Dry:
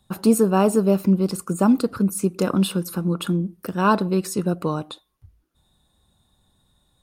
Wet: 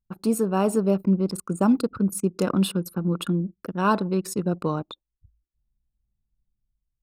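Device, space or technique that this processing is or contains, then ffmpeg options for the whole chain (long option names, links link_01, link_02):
voice memo with heavy noise removal: -af "anlmdn=15.8,dynaudnorm=framelen=220:gausssize=5:maxgain=6dB,volume=-7dB"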